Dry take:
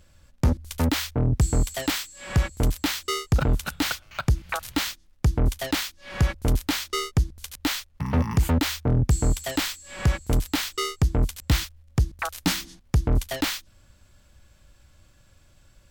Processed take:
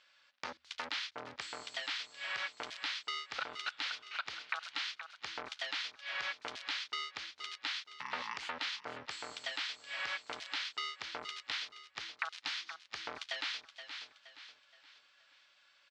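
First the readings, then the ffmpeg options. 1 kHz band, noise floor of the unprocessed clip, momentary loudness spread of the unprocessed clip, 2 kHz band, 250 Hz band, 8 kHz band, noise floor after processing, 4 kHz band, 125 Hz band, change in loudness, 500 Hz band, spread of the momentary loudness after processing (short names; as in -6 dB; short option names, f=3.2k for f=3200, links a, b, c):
-10.0 dB, -57 dBFS, 5 LU, -6.0 dB, -31.5 dB, -19.5 dB, -68 dBFS, -7.0 dB, under -40 dB, -14.0 dB, -18.5 dB, 7 LU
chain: -filter_complex "[0:a]highpass=1.4k,alimiter=limit=-21dB:level=0:latency=1:release=21,asplit=2[a][b];[b]aecho=0:1:472|944|1416|1888:0.211|0.0845|0.0338|0.0135[c];[a][c]amix=inputs=2:normalize=0,acompressor=threshold=-35dB:ratio=6,lowpass=f=4.6k:w=0.5412,lowpass=f=4.6k:w=1.3066,volume=1.5dB"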